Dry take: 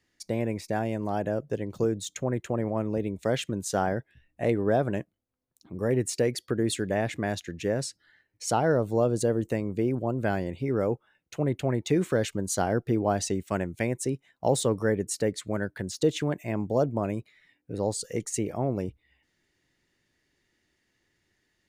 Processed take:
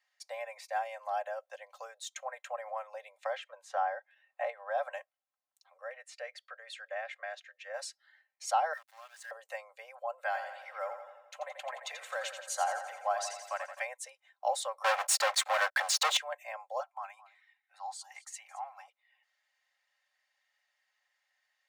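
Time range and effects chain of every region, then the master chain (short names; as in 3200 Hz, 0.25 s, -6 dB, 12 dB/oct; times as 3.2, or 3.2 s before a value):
3.19–4.78 LPF 1500 Hz 6 dB/oct + three-band squash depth 70%
5.78–7.74 band-pass 1000 Hz, Q 0.59 + bell 910 Hz -14.5 dB 0.49 oct
8.73–9.31 resonant high-pass 1800 Hz, resonance Q 13 + compressor 2:1, threshold -48 dBFS + sample gate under -47.5 dBFS
10.24–13.85 HPF 490 Hz + feedback echo 86 ms, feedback 59%, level -8.5 dB
14.84–16.17 hard clip -14.5 dBFS + sample leveller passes 5
16.8–18.88 Chebyshev high-pass 770 Hz, order 5 + high shelf 3700 Hz -5.5 dB + echo 0.219 s -18 dB
whole clip: steep high-pass 600 Hz 72 dB/oct; high shelf 4400 Hz -8.5 dB; comb 3.8 ms, depth 63%; gain -2.5 dB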